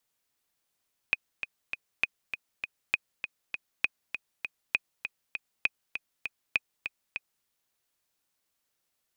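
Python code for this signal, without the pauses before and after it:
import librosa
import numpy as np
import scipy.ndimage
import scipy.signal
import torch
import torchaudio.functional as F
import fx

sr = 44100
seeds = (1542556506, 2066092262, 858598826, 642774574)

y = fx.click_track(sr, bpm=199, beats=3, bars=7, hz=2500.0, accent_db=9.0, level_db=-10.5)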